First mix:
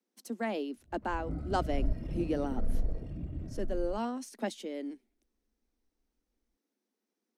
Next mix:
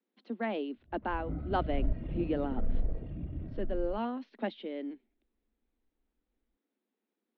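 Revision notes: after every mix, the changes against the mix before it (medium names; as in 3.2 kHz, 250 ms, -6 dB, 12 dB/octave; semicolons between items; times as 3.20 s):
master: add steep low-pass 3.8 kHz 48 dB/octave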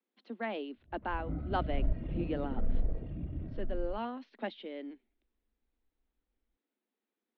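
speech: add bass shelf 500 Hz -6.5 dB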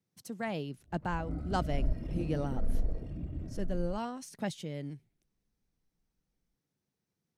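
speech: remove steep high-pass 220 Hz 72 dB/octave; master: remove steep low-pass 3.8 kHz 48 dB/octave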